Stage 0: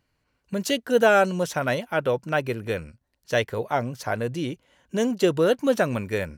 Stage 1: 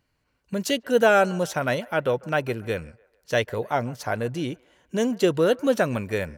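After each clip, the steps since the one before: band-limited delay 0.145 s, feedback 44%, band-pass 1000 Hz, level -22 dB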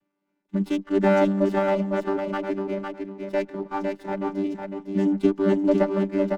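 chord vocoder bare fifth, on G3; feedback echo 0.505 s, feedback 22%, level -4.5 dB; running maximum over 5 samples

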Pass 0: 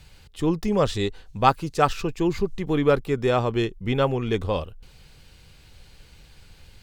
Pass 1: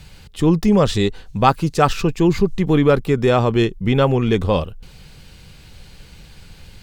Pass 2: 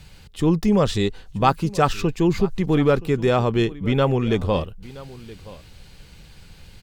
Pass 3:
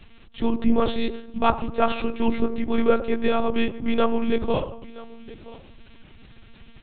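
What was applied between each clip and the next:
bell 180 Hz +5 dB 0.89 oct; in parallel at +2 dB: limiter -14.5 dBFS, peak gain reduction 10.5 dB
echo 0.973 s -19.5 dB; gain -3.5 dB
on a send at -11 dB: reverb RT60 0.75 s, pre-delay 3 ms; on the sum: monotone LPC vocoder at 8 kHz 230 Hz; gain -2 dB

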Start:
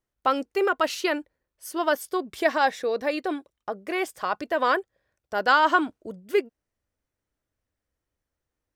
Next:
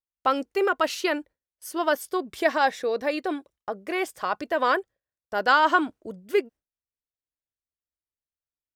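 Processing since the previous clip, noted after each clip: gate with hold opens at -48 dBFS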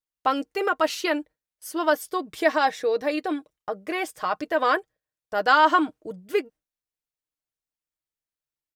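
comb 6.5 ms, depth 47%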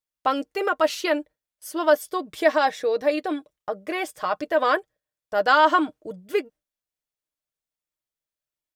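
small resonant body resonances 590/3400 Hz, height 6 dB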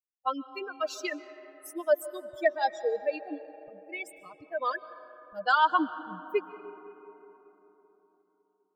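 per-bin expansion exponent 3; digital reverb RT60 4 s, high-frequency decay 0.35×, pre-delay 0.1 s, DRR 14.5 dB; gain -2 dB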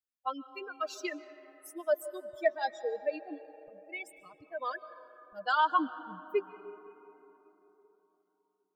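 flange 0.23 Hz, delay 0.5 ms, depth 4.8 ms, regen +66%

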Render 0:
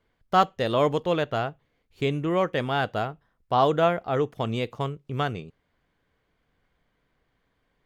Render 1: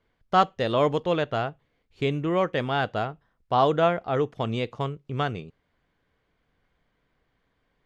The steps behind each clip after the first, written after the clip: LPF 6800 Hz 12 dB/oct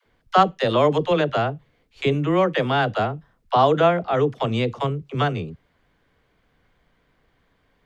in parallel at -2 dB: compressor, threshold -29 dBFS, peak gain reduction 14.5 dB; on the sum: dispersion lows, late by 59 ms, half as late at 380 Hz; gain +2.5 dB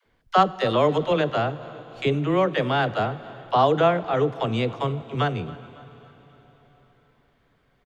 feedback echo 0.277 s, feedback 50%, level -21 dB; plate-style reverb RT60 4.7 s, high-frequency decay 0.95×, DRR 16 dB; gain -2 dB

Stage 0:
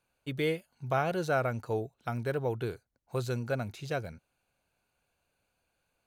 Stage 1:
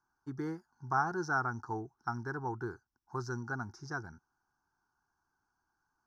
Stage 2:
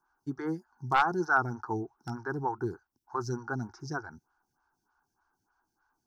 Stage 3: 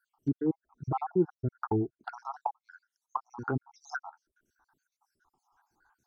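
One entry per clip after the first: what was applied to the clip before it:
EQ curve 190 Hz 0 dB, 360 Hz +6 dB, 570 Hz -20 dB, 830 Hz +11 dB, 1600 Hz +8 dB, 2500 Hz -29 dB, 3800 Hz -20 dB, 5500 Hz +13 dB, 8000 Hz -15 dB, 13000 Hz -17 dB; gain -6.5 dB
one-sided fold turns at -23.5 dBFS; photocell phaser 3.3 Hz; gain +7.5 dB
random spectral dropouts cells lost 63%; treble ducked by the level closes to 470 Hz, closed at -34 dBFS; gain +7 dB

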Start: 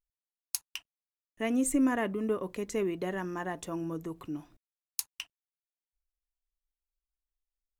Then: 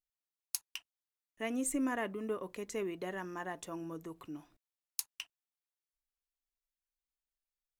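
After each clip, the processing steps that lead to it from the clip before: low shelf 340 Hz -7 dB; gain -3.5 dB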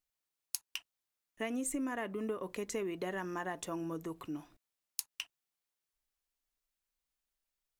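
compressor, threshold -38 dBFS, peak gain reduction 8.5 dB; gain +4.5 dB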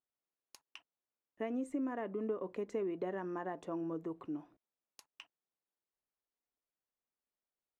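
band-pass 410 Hz, Q 0.63; gain +1 dB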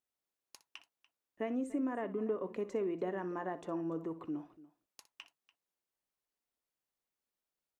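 tapped delay 61/290 ms -15/-19 dB; gain +1.5 dB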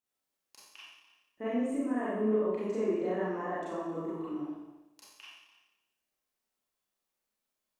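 Schroeder reverb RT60 0.93 s, combs from 29 ms, DRR -9 dB; gain -4.5 dB

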